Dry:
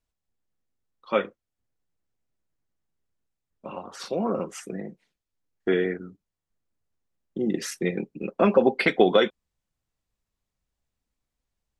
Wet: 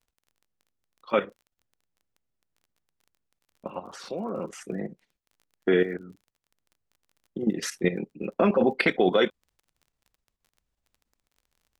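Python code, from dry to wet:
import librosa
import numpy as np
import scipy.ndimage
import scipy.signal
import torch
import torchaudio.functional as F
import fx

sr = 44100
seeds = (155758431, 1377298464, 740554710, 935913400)

y = fx.high_shelf(x, sr, hz=6100.0, db=-4.0)
y = fx.level_steps(y, sr, step_db=12)
y = fx.dmg_crackle(y, sr, seeds[0], per_s=24.0, level_db=-51.0)
y = y * librosa.db_to_amplitude(4.5)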